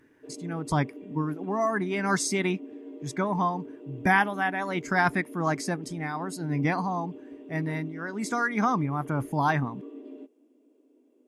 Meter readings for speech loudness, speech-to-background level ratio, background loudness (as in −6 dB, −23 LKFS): −28.5 LKFS, 14.5 dB, −43.0 LKFS